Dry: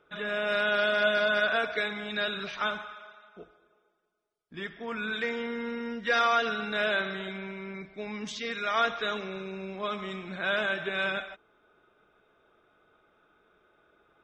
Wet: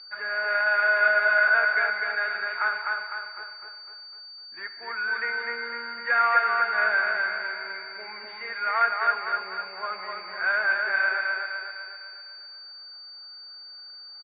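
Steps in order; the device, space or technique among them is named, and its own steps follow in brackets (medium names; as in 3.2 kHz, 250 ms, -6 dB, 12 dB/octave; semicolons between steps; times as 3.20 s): toy sound module (decimation joined by straight lines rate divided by 4×; class-D stage that switches slowly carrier 4.6 kHz; cabinet simulation 750–3800 Hz, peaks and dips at 890 Hz +6 dB, 1.5 kHz +9 dB, 2.1 kHz +8 dB, 3.2 kHz -9 dB); feedback delay 252 ms, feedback 50%, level -3.5 dB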